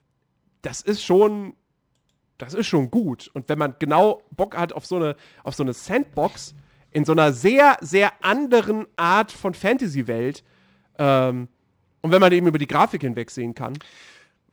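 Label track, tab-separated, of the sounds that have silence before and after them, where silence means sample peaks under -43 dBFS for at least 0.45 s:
0.640000	1.510000	sound
2.400000	10.390000	sound
10.990000	11.460000	sound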